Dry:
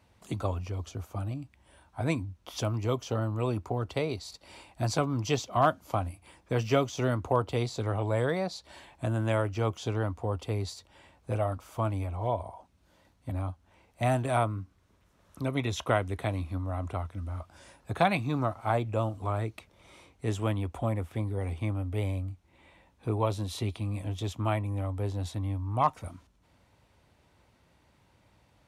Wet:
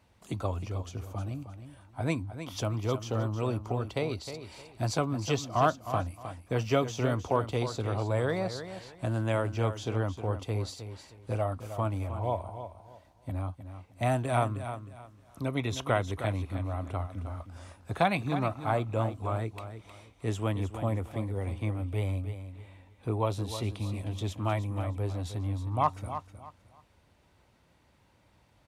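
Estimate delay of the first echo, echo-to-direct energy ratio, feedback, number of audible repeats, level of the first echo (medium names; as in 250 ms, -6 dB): 311 ms, -10.0 dB, 26%, 3, -10.5 dB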